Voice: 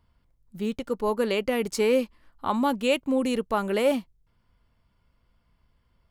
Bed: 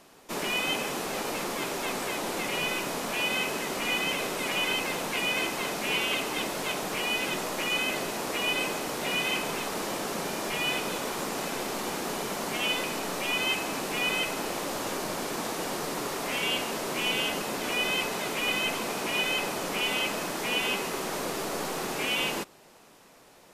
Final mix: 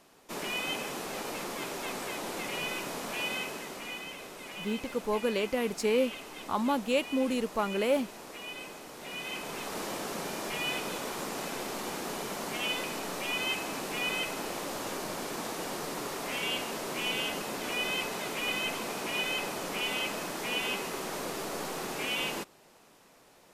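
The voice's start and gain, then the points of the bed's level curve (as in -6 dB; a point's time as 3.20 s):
4.05 s, -4.5 dB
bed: 3.27 s -5 dB
4.13 s -13.5 dB
8.92 s -13.5 dB
9.78 s -4 dB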